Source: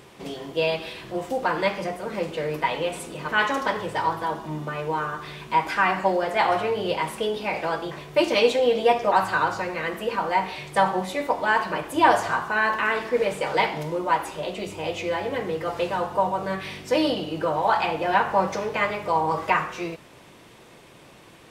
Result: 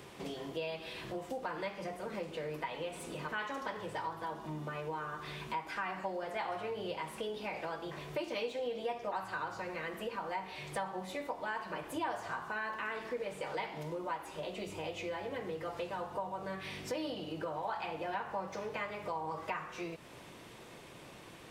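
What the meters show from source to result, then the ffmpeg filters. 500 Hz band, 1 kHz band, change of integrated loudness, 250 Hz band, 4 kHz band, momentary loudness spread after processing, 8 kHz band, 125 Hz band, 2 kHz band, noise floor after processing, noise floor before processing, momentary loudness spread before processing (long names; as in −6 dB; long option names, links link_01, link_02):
−15.0 dB, −16.0 dB, −15.5 dB, −13.5 dB, −14.5 dB, 5 LU, −12.0 dB, −12.0 dB, −15.5 dB, −52 dBFS, −49 dBFS, 10 LU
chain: -filter_complex "[0:a]acrossover=split=110|4300[link_01][link_02][link_03];[link_03]asoftclip=type=tanh:threshold=-35.5dB[link_04];[link_01][link_02][link_04]amix=inputs=3:normalize=0,acompressor=threshold=-37dB:ratio=3,volume=-3dB"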